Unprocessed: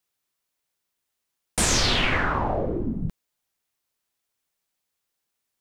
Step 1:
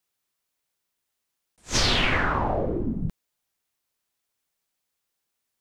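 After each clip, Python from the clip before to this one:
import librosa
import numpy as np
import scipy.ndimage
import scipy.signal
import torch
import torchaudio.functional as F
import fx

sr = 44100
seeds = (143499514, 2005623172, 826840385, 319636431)

y = fx.attack_slew(x, sr, db_per_s=310.0)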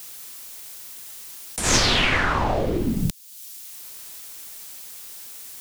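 y = fx.high_shelf(x, sr, hz=3900.0, db=10.5)
y = fx.band_squash(y, sr, depth_pct=100)
y = y * librosa.db_to_amplitude(2.0)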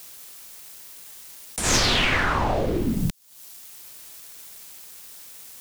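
y = fx.leveller(x, sr, passes=2)
y = y * librosa.db_to_amplitude(-8.0)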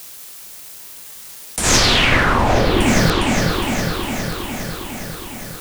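y = fx.echo_opening(x, sr, ms=409, hz=750, octaves=2, feedback_pct=70, wet_db=-3)
y = y * librosa.db_to_amplitude(6.5)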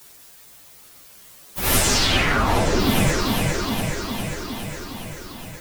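y = fx.partial_stretch(x, sr, pct=119)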